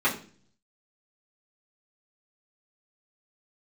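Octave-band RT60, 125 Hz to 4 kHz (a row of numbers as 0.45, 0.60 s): 0.85, 0.70, 0.50, 0.35, 0.40, 0.45 s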